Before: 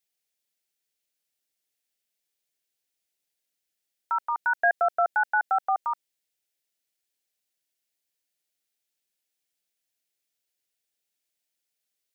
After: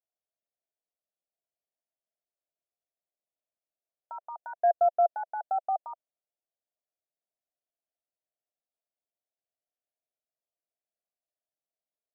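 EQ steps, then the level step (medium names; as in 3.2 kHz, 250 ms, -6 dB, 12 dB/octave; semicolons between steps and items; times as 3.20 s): band-pass filter 670 Hz, Q 5.2; tilt EQ -5.5 dB/octave; 0.0 dB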